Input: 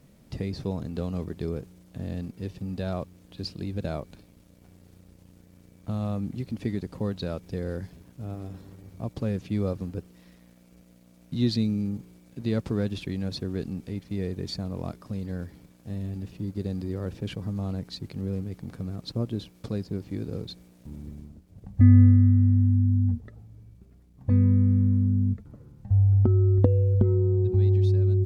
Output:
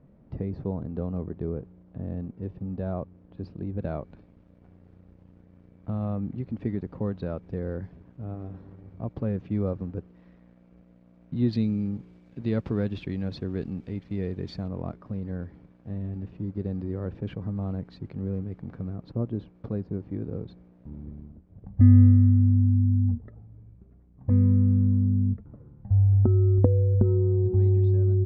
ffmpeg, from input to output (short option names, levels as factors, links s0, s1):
-af "asetnsamples=n=441:p=0,asendcmd='3.79 lowpass f 1600;11.53 lowpass f 2700;14.68 lowpass f 1700;18.93 lowpass f 1300',lowpass=1100"